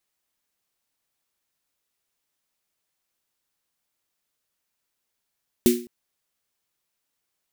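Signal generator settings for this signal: snare drum length 0.21 s, tones 240 Hz, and 360 Hz, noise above 2 kHz, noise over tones -8.5 dB, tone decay 0.39 s, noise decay 0.33 s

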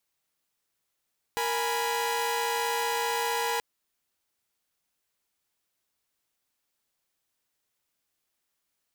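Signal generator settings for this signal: chord A#4/G#5/B5 saw, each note -28.5 dBFS 2.23 s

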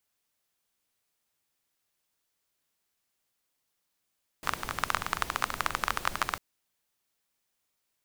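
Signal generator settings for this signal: rain from filtered ticks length 1.95 s, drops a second 19, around 1.2 kHz, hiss -8.5 dB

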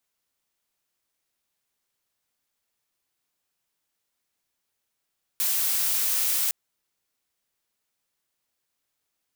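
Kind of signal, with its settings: noise blue, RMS -24.5 dBFS 1.11 s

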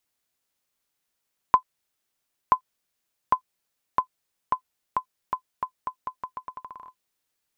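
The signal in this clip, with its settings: bouncing ball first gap 0.98 s, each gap 0.82, 1.02 kHz, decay 89 ms -5 dBFS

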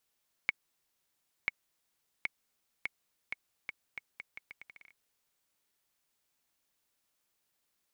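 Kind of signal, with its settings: bouncing ball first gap 0.99 s, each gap 0.78, 2.21 kHz, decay 23 ms -14 dBFS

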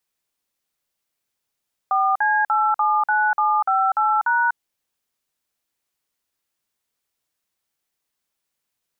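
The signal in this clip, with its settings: DTMF "4C879758#", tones 245 ms, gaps 49 ms, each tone -18.5 dBFS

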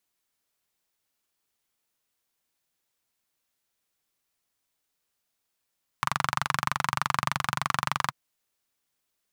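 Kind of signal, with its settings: single-cylinder engine model, steady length 2.09 s, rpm 2800, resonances 140/1100 Hz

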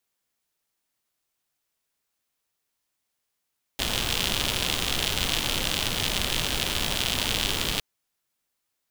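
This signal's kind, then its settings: rain from filtered ticks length 4.01 s, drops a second 110, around 3.2 kHz, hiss -0.5 dB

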